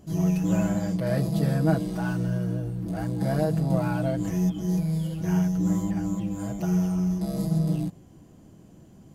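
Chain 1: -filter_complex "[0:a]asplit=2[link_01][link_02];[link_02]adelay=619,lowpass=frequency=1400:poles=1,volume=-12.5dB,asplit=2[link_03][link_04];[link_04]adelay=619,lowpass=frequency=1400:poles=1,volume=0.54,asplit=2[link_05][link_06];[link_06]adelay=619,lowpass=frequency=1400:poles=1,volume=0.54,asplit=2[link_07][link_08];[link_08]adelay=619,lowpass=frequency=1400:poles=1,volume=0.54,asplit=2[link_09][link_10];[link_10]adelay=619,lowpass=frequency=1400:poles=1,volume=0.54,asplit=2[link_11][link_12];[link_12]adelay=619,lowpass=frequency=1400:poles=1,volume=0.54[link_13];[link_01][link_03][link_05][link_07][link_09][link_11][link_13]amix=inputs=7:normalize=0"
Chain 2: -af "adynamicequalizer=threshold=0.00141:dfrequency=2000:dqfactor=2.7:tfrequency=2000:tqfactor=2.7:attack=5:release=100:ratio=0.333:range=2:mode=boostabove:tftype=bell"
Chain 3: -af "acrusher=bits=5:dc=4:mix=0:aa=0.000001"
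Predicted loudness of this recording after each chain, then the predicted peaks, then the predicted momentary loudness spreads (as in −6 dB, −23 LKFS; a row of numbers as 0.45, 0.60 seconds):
−26.0, −26.0, −25.5 LKFS; −11.0, −11.0, −11.0 dBFS; 10, 6, 6 LU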